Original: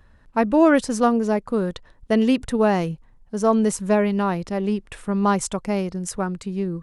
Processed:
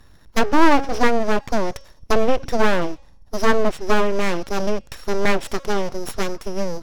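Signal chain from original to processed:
samples sorted by size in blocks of 8 samples
hum removal 274.8 Hz, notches 32
treble cut that deepens with the level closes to 2,100 Hz, closed at −15.5 dBFS
full-wave rectification
level +5 dB

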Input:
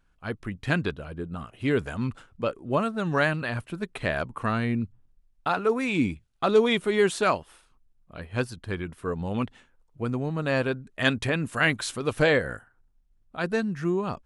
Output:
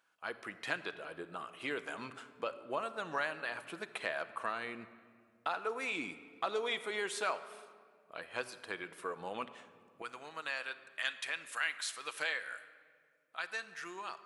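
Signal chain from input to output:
high-pass filter 580 Hz 12 dB per octave, from 0:10.02 1,400 Hz
downward compressor 2 to 1, threshold −40 dBFS, peak gain reduction 11.5 dB
convolution reverb RT60 2.0 s, pre-delay 6 ms, DRR 10 dB

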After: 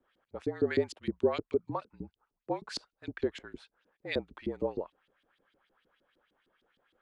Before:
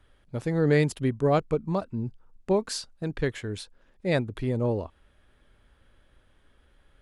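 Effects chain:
auto-filter band-pass saw up 6.5 Hz 310–4,600 Hz
frequency shifter −45 Hz
level +1.5 dB

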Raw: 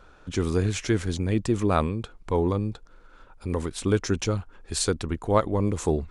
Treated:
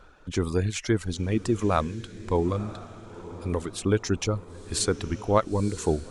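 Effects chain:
reverb reduction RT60 0.87 s
feedback delay with all-pass diffusion 971 ms, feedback 42%, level −15 dB

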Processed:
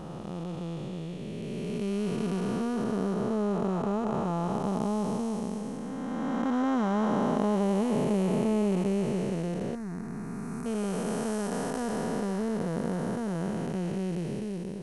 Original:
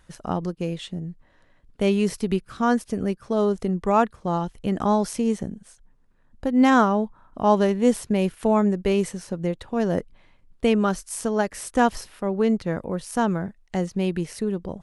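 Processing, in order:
spectrum smeared in time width 1,040 ms
0:09.75–0:10.66: phaser with its sweep stopped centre 1,300 Hz, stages 4

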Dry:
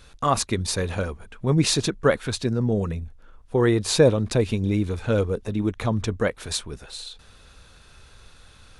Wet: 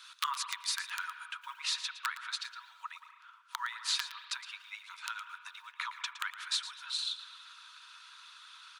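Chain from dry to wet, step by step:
one scale factor per block 7 bits
high-shelf EQ 8,100 Hz −2 dB, from 0:01.56 −10.5 dB
harmonic and percussive parts rebalanced percussive +8 dB
dynamic equaliser 1,800 Hz, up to +7 dB, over −37 dBFS, Q 1.5
downward compressor 8 to 1, threshold −27 dBFS, peak gain reduction 22 dB
wrap-around overflow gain 16.5 dB
Chebyshev high-pass with heavy ripple 930 Hz, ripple 6 dB
single-tap delay 114 ms −13 dB
convolution reverb RT60 1.0 s, pre-delay 174 ms, DRR 11 dB

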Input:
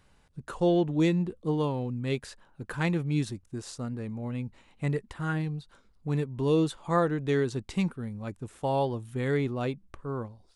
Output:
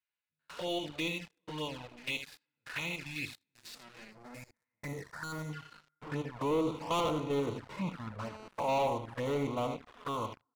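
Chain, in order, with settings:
spectrum averaged block by block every 100 ms
notch comb filter 390 Hz
feedback delay network reverb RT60 2.1 s, low-frequency decay 1.35×, high-frequency decay 1×, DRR 18.5 dB
band-pass filter sweep 2,900 Hz → 1,100 Hz, 0:03.59–0:06.62
thirty-one-band graphic EQ 100 Hz +11 dB, 3,150 Hz −8 dB, 6,300 Hz −7 dB
single-tap delay 78 ms −10 dB
leveller curve on the samples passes 5
flanger swept by the level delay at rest 11.9 ms, full sweep at −29.5 dBFS
0:04.11–0:05.53: parametric band 2,800 Hz −14.5 dB 0.92 octaves
0:08.20–0:08.86: phone interference −49 dBFS
level −1.5 dB

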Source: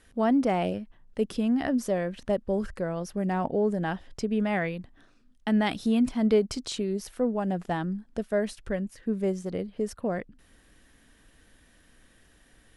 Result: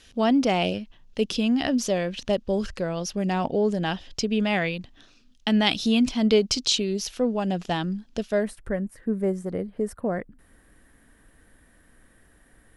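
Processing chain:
flat-topped bell 4,100 Hz +11 dB, from 0:08.42 −8.5 dB
level +2.5 dB

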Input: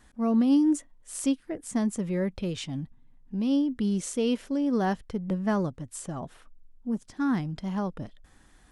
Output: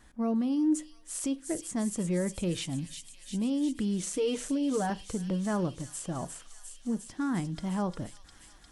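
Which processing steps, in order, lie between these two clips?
0:04.13–0:04.90: comb filter 6.6 ms, depth 89%
brickwall limiter −23 dBFS, peak gain reduction 9 dB
delay with a high-pass on its return 353 ms, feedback 78%, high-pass 3,500 Hz, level −5 dB
on a send at −15 dB: convolution reverb RT60 0.35 s, pre-delay 3 ms

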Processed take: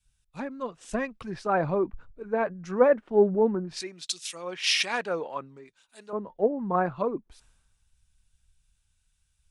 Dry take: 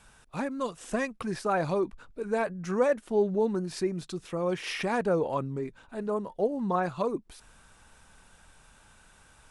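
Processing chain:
treble cut that deepens with the level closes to 2,400 Hz, closed at −26 dBFS
0:03.80–0:06.13: spectral tilt +4 dB per octave
multiband upward and downward expander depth 100%

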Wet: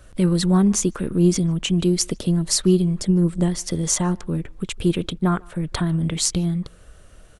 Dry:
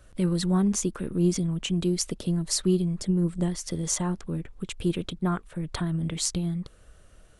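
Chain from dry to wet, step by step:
far-end echo of a speakerphone 150 ms, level −25 dB
level +6.5 dB

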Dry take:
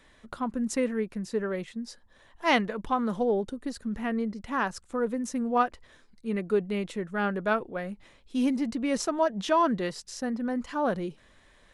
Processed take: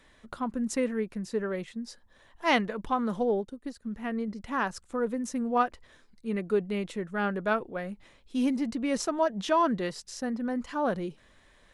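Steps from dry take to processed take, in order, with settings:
0:03.32–0:04.28: expander for the loud parts 1.5 to 1, over −50 dBFS
level −1 dB

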